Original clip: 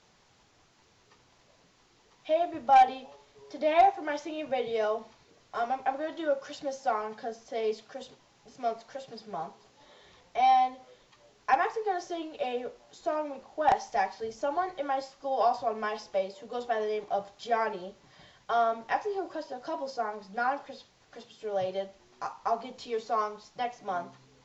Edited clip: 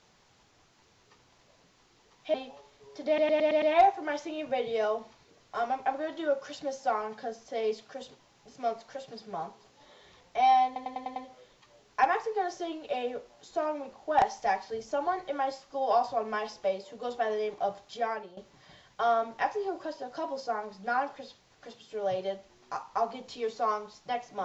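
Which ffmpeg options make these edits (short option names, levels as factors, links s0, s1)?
-filter_complex "[0:a]asplit=13[s0][s1][s2][s3][s4][s5][s6][s7][s8][s9][s10][s11][s12];[s0]atrim=end=2.342[s13];[s1]atrim=start=2.888:end=3.732[s14];[s2]atrim=start=3.618:end=3.732[s15];[s3]atrim=start=3.618:end=3.732[s16];[s4]atrim=start=3.618:end=3.732[s17];[s5]atrim=start=3.618:end=3.732[s18];[s6]atrim=start=3.618:end=10.762[s19];[s7]atrim=start=10.658:end=10.762[s20];[s8]atrim=start=10.658:end=10.762[s21];[s9]atrim=start=10.658:end=10.762[s22];[s10]atrim=start=10.658:end=10.762[s23];[s11]atrim=start=10.658:end=17.87,asetpts=PTS-STARTPTS,afade=t=out:st=6.672:d=0.54:silence=0.211349[s24];[s12]atrim=start=17.87,asetpts=PTS-STARTPTS,afade=t=in:d=0.004:c=hsin:silence=0.211349[s25];[s13][s14]acrossfade=d=0.004:c1=hsin:c2=hsin[s26];[s26][s15]acrossfade=d=0.004:c1=hsin:c2=hsin[s27];[s27][s16]acrossfade=d=0.004:c1=hsin:c2=hsin[s28];[s28][s17]acrossfade=d=0.004:c1=hsin:c2=hsin[s29];[s29][s18]acrossfade=d=0.004:c1=hsin:c2=hsin[s30];[s30][s19]acrossfade=d=0.004:c1=hsin:c2=hsin[s31];[s31][s20]acrossfade=d=0.004:c1=hsin:c2=hsin[s32];[s32][s21]acrossfade=d=0.004:c1=hsin:c2=hsin[s33];[s33][s22]acrossfade=d=0.004:c1=hsin:c2=hsin[s34];[s34][s23]acrossfade=d=0.004:c1=hsin:c2=hsin[s35];[s24][s25]concat=n=2:v=0:a=1[s36];[s35][s36]acrossfade=d=0.004:c1=hsin:c2=hsin"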